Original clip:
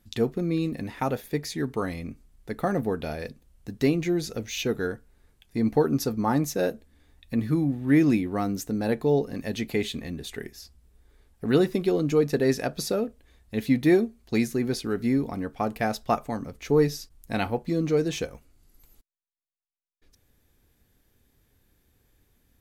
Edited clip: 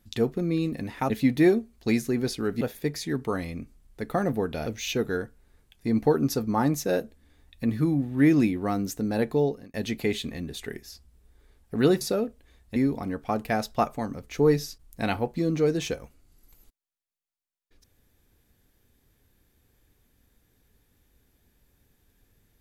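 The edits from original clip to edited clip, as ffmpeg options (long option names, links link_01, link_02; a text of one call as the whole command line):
ffmpeg -i in.wav -filter_complex "[0:a]asplit=7[link_01][link_02][link_03][link_04][link_05][link_06][link_07];[link_01]atrim=end=1.102[link_08];[link_02]atrim=start=13.558:end=15.072[link_09];[link_03]atrim=start=1.098:end=3.152[link_10];[link_04]atrim=start=4.358:end=9.44,asetpts=PTS-STARTPTS,afade=type=out:start_time=4.702:duration=0.38[link_11];[link_05]atrim=start=9.44:end=11.712,asetpts=PTS-STARTPTS,afade=type=in:duration=0.004:curve=hsin[link_12];[link_06]atrim=start=12.808:end=13.562[link_13];[link_07]atrim=start=15.068[link_14];[link_08][link_09]acrossfade=duration=0.004:curve1=hsin:curve2=hsin[link_15];[link_15][link_10]acrossfade=duration=0.004:curve1=hsin:curve2=hsin[link_16];[link_11][link_12]concat=n=2:v=0:a=1[link_17];[link_16][link_17]acrossfade=duration=0.004:curve1=hsin:curve2=hsin[link_18];[link_18][link_13]acrossfade=duration=0.004:curve1=hsin:curve2=hsin[link_19];[link_19][link_14]acrossfade=duration=0.004:curve1=hsin:curve2=hsin" out.wav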